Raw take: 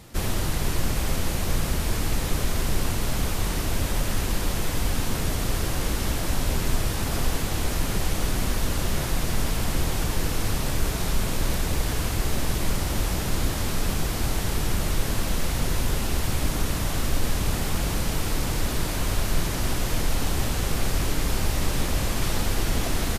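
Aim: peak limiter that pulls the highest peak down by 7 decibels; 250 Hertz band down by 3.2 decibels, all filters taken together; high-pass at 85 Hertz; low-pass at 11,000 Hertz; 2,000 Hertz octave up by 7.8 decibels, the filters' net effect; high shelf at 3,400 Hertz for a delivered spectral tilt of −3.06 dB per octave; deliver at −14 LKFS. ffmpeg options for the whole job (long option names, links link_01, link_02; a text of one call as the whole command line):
ffmpeg -i in.wav -af "highpass=85,lowpass=11000,equalizer=frequency=250:width_type=o:gain=-4.5,equalizer=frequency=2000:width_type=o:gain=8,highshelf=frequency=3400:gain=5.5,volume=15dB,alimiter=limit=-6dB:level=0:latency=1" out.wav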